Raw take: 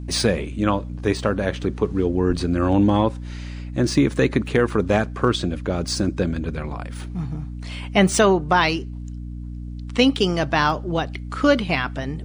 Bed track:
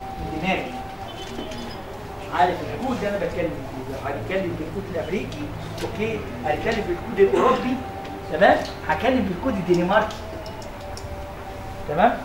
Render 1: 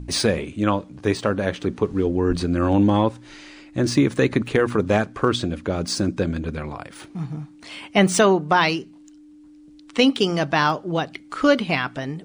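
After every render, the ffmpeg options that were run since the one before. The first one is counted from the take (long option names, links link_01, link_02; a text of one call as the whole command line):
ffmpeg -i in.wav -af "bandreject=frequency=60:width_type=h:width=4,bandreject=frequency=120:width_type=h:width=4,bandreject=frequency=180:width_type=h:width=4,bandreject=frequency=240:width_type=h:width=4" out.wav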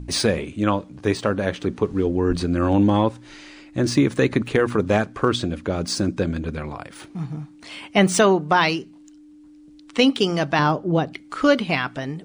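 ffmpeg -i in.wav -filter_complex "[0:a]asettb=1/sr,asplit=3[link_01][link_02][link_03];[link_01]atrim=end=10.594[link_04];[link_02]atrim=start=10.59:end=11.13,asetpts=PTS-STARTPTS,afade=type=in:duration=0.004:curve=qsin,afade=type=out:start_time=0.536:duration=0.004:curve=qsin,tiltshelf=frequency=890:gain=6[link_05];[link_03]atrim=start=11.126[link_06];[link_04][link_05]acrossfade=duration=0.004:curve1=hsin:curve2=qsin[link_07];[link_07][link_06]acrossfade=duration=0.004:curve1=qsin:curve2=hsin" out.wav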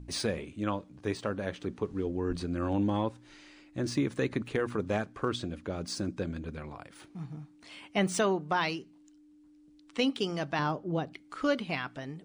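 ffmpeg -i in.wav -af "volume=-11.5dB" out.wav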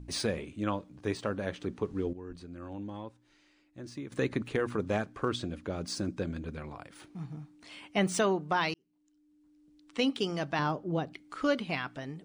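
ffmpeg -i in.wav -filter_complex "[0:a]asplit=4[link_01][link_02][link_03][link_04];[link_01]atrim=end=2.132[link_05];[link_02]atrim=start=2.128:end=4.122,asetpts=PTS-STARTPTS,volume=-12dB[link_06];[link_03]atrim=start=4.118:end=8.74,asetpts=PTS-STARTPTS,afade=type=out:start_time=4.618:duration=0.004:curve=hsin[link_07];[link_04]atrim=start=8.74,asetpts=PTS-STARTPTS,afade=type=in:duration=1.36[link_08];[link_05][link_06]acrossfade=duration=0.004:curve1=hsin:curve2=hsin[link_09];[link_07][link_08]concat=n=2:v=0:a=1[link_10];[link_09][link_10]acrossfade=duration=0.004:curve1=hsin:curve2=hsin" out.wav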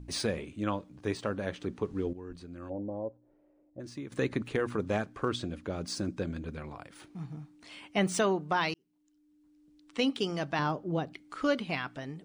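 ffmpeg -i in.wav -filter_complex "[0:a]asplit=3[link_01][link_02][link_03];[link_01]afade=type=out:start_time=2.69:duration=0.02[link_04];[link_02]lowpass=frequency=580:width_type=q:width=4,afade=type=in:start_time=2.69:duration=0.02,afade=type=out:start_time=3.79:duration=0.02[link_05];[link_03]afade=type=in:start_time=3.79:duration=0.02[link_06];[link_04][link_05][link_06]amix=inputs=3:normalize=0" out.wav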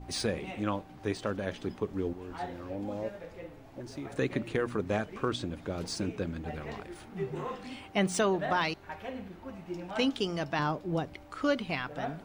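ffmpeg -i in.wav -i bed.wav -filter_complex "[1:a]volume=-20dB[link_01];[0:a][link_01]amix=inputs=2:normalize=0" out.wav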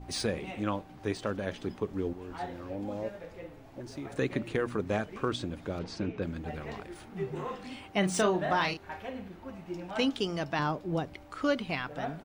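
ffmpeg -i in.wav -filter_complex "[0:a]asplit=3[link_01][link_02][link_03];[link_01]afade=type=out:start_time=5.78:duration=0.02[link_04];[link_02]lowpass=3500,afade=type=in:start_time=5.78:duration=0.02,afade=type=out:start_time=6.21:duration=0.02[link_05];[link_03]afade=type=in:start_time=6.21:duration=0.02[link_06];[link_04][link_05][link_06]amix=inputs=3:normalize=0,asplit=3[link_07][link_08][link_09];[link_07]afade=type=out:start_time=8.02:duration=0.02[link_10];[link_08]asplit=2[link_11][link_12];[link_12]adelay=33,volume=-6dB[link_13];[link_11][link_13]amix=inputs=2:normalize=0,afade=type=in:start_time=8.02:duration=0.02,afade=type=out:start_time=8.99:duration=0.02[link_14];[link_09]afade=type=in:start_time=8.99:duration=0.02[link_15];[link_10][link_14][link_15]amix=inputs=3:normalize=0" out.wav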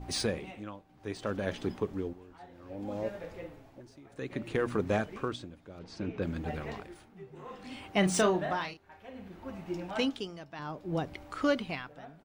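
ffmpeg -i in.wav -filter_complex "[0:a]tremolo=f=0.62:d=0.84,asplit=2[link_01][link_02];[link_02]asoftclip=type=hard:threshold=-26.5dB,volume=-11dB[link_03];[link_01][link_03]amix=inputs=2:normalize=0" out.wav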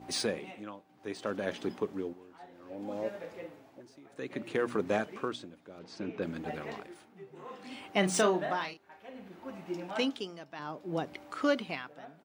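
ffmpeg -i in.wav -af "highpass=200" out.wav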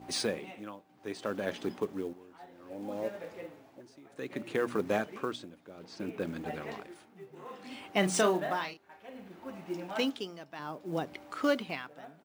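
ffmpeg -i in.wav -af "acrusher=bits=7:mode=log:mix=0:aa=0.000001" out.wav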